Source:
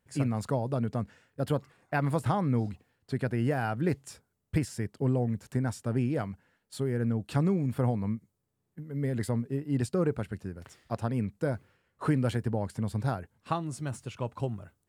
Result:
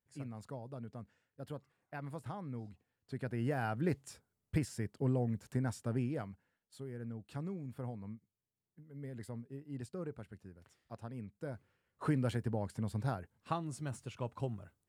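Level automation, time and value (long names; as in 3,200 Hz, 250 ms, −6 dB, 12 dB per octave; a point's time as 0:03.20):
0:02.61 −16 dB
0:03.63 −5.5 dB
0:05.86 −5.5 dB
0:06.77 −15 dB
0:11.30 −15 dB
0:12.06 −6 dB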